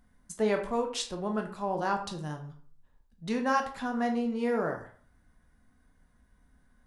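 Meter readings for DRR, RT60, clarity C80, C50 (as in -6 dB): 3.0 dB, 0.50 s, 13.5 dB, 9.5 dB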